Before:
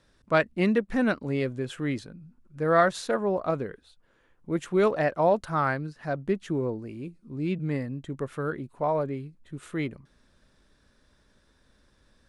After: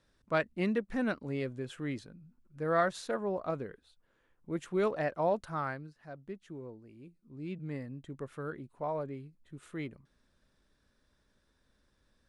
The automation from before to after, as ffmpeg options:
ffmpeg -i in.wav -af "afade=type=out:start_time=5.39:duration=0.67:silence=0.354813,afade=type=in:start_time=6.84:duration=1.11:silence=0.421697" out.wav

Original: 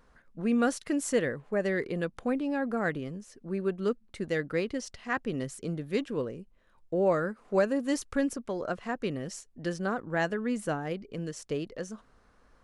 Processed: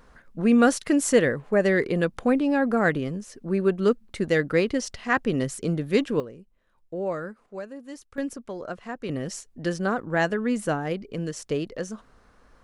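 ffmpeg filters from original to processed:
ffmpeg -i in.wav -af "asetnsamples=nb_out_samples=441:pad=0,asendcmd='6.2 volume volume -3.5dB;7.46 volume volume -11dB;8.18 volume volume -1.5dB;9.09 volume volume 5.5dB',volume=8dB" out.wav

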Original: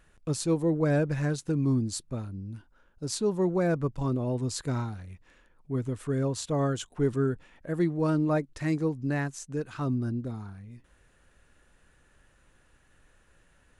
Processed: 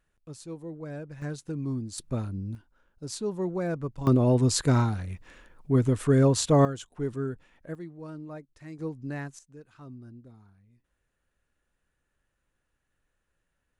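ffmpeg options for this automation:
ffmpeg -i in.wav -af "asetnsamples=nb_out_samples=441:pad=0,asendcmd='1.22 volume volume -6dB;1.98 volume volume 4dB;2.55 volume volume -4dB;4.07 volume volume 8dB;6.65 volume volume -5dB;7.75 volume volume -15dB;8.79 volume volume -6dB;9.39 volume volume -16dB',volume=-13.5dB" out.wav

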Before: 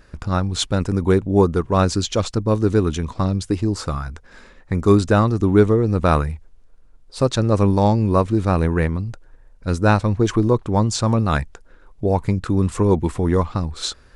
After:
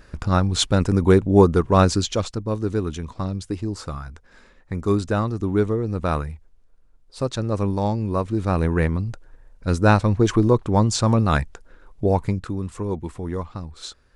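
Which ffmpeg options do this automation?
ffmpeg -i in.wav -af "volume=8dB,afade=type=out:start_time=1.79:duration=0.59:silence=0.398107,afade=type=in:start_time=8.19:duration=0.78:silence=0.473151,afade=type=out:start_time=12.07:duration=0.52:silence=0.316228" out.wav

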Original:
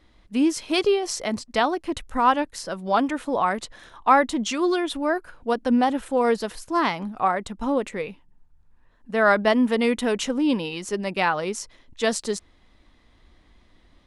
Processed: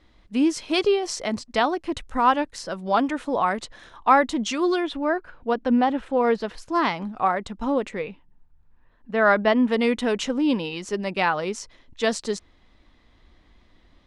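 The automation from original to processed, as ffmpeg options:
ffmpeg -i in.wav -af "asetnsamples=nb_out_samples=441:pad=0,asendcmd='4.87 lowpass f 3600;6.58 lowpass f 6400;7.99 lowpass f 3800;9.71 lowpass f 6800',lowpass=7900" out.wav

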